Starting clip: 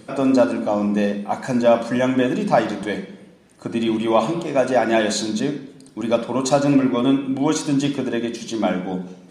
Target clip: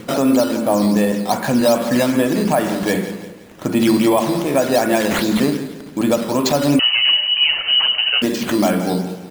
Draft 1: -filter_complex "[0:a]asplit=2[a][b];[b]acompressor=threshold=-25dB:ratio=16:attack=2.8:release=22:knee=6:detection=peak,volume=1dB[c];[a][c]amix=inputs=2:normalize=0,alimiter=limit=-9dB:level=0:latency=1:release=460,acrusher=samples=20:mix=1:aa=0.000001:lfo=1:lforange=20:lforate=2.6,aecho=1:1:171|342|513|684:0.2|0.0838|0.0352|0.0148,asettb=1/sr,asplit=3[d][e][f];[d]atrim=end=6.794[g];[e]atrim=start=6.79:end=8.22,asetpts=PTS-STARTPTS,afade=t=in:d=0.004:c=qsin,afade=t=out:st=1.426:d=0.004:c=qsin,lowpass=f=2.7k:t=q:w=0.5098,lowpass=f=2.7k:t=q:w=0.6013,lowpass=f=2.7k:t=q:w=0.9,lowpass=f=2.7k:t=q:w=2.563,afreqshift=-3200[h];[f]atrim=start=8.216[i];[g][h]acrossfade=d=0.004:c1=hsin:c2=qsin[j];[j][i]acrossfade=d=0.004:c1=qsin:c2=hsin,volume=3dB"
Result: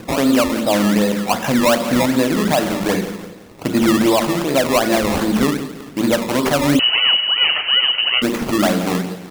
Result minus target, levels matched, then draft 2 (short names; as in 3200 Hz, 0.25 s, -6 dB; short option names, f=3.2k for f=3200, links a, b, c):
decimation with a swept rate: distortion +8 dB
-filter_complex "[0:a]asplit=2[a][b];[b]acompressor=threshold=-25dB:ratio=16:attack=2.8:release=22:knee=6:detection=peak,volume=1dB[c];[a][c]amix=inputs=2:normalize=0,alimiter=limit=-9dB:level=0:latency=1:release=460,acrusher=samples=7:mix=1:aa=0.000001:lfo=1:lforange=7:lforate=2.6,aecho=1:1:171|342|513|684:0.2|0.0838|0.0352|0.0148,asettb=1/sr,asplit=3[d][e][f];[d]atrim=end=6.794[g];[e]atrim=start=6.79:end=8.22,asetpts=PTS-STARTPTS,afade=t=in:d=0.004:c=qsin,afade=t=out:st=1.426:d=0.004:c=qsin,lowpass=f=2.7k:t=q:w=0.5098,lowpass=f=2.7k:t=q:w=0.6013,lowpass=f=2.7k:t=q:w=0.9,lowpass=f=2.7k:t=q:w=2.563,afreqshift=-3200[h];[f]atrim=start=8.216[i];[g][h]acrossfade=d=0.004:c1=hsin:c2=qsin[j];[j][i]acrossfade=d=0.004:c1=qsin:c2=hsin,volume=3dB"